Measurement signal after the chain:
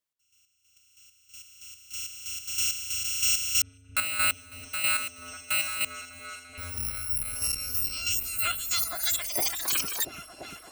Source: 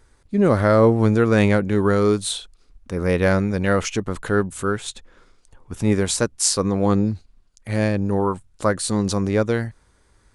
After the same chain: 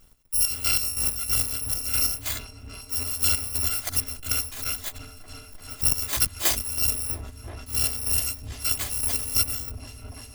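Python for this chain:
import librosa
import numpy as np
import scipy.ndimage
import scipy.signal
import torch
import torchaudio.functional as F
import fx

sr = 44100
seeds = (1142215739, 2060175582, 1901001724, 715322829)

y = fx.bit_reversed(x, sr, seeds[0], block=256)
y = fx.rider(y, sr, range_db=4, speed_s=0.5)
y = fx.chopper(y, sr, hz=3.1, depth_pct=60, duty_pct=40)
y = fx.echo_opening(y, sr, ms=342, hz=200, octaves=1, feedback_pct=70, wet_db=-3)
y = fx.transformer_sat(y, sr, knee_hz=510.0)
y = y * 10.0 ** (-2.5 / 20.0)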